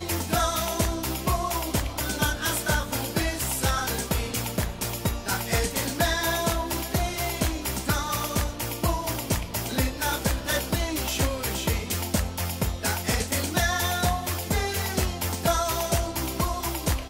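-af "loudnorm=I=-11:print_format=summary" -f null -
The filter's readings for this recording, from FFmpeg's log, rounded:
Input Integrated:    -26.6 LUFS
Input True Peak:     -10.2 dBTP
Input LRA:             0.9 LU
Input Threshold:     -36.6 LUFS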